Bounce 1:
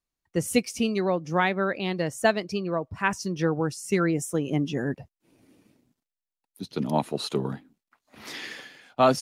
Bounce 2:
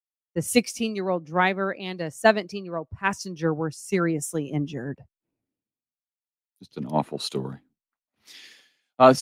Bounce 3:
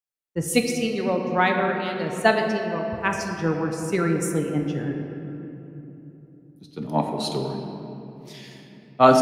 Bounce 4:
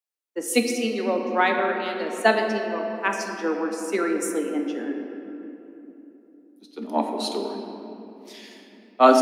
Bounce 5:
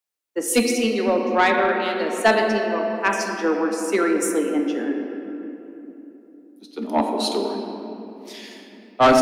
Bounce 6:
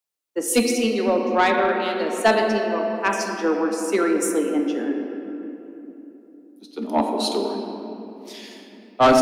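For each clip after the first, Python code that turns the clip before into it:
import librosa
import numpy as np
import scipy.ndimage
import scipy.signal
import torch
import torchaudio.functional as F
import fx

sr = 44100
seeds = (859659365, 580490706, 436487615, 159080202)

y1 = fx.band_widen(x, sr, depth_pct=100)
y1 = y1 * 10.0 ** (-1.0 / 20.0)
y2 = fx.room_shoebox(y1, sr, seeds[0], volume_m3=180.0, walls='hard', distance_m=0.34)
y3 = scipy.signal.sosfilt(scipy.signal.butter(16, 210.0, 'highpass', fs=sr, output='sos'), y2)
y4 = 10.0 ** (-14.0 / 20.0) * np.tanh(y3 / 10.0 ** (-14.0 / 20.0))
y4 = y4 * 10.0 ** (5.0 / 20.0)
y5 = fx.peak_eq(y4, sr, hz=1900.0, db=-3.0, octaves=0.77)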